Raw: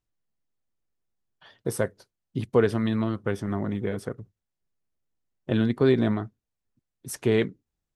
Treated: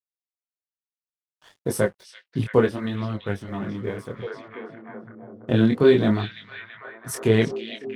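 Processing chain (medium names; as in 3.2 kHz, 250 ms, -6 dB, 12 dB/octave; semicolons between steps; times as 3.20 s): chorus voices 2, 0.64 Hz, delay 23 ms, depth 3.9 ms; crossover distortion -58 dBFS; on a send: repeats whose band climbs or falls 334 ms, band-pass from 3.6 kHz, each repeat -0.7 oct, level -3 dB; 2.56–4.15 s: on the sum: upward expansion 1.5:1, over -35 dBFS; trim +7.5 dB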